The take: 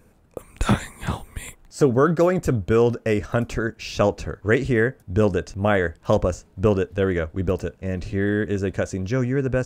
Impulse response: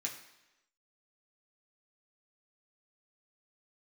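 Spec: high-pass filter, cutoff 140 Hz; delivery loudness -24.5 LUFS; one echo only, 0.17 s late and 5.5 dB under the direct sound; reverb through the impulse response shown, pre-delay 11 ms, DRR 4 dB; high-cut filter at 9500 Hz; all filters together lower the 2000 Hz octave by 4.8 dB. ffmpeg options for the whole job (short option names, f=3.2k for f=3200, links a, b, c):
-filter_complex "[0:a]highpass=140,lowpass=9.5k,equalizer=f=2k:t=o:g=-6.5,aecho=1:1:170:0.531,asplit=2[a][b];[1:a]atrim=start_sample=2205,adelay=11[c];[b][c]afir=irnorm=-1:irlink=0,volume=-4.5dB[d];[a][d]amix=inputs=2:normalize=0,volume=-3dB"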